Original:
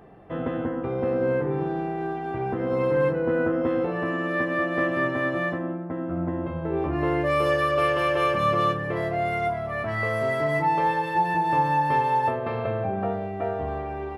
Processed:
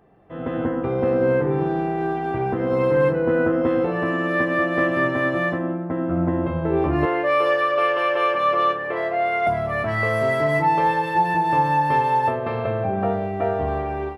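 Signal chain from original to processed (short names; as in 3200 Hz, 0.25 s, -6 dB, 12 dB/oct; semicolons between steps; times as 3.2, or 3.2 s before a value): 7.05–9.47 three-band isolator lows -21 dB, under 350 Hz, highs -12 dB, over 3900 Hz; AGC gain up to 15 dB; gain -7.5 dB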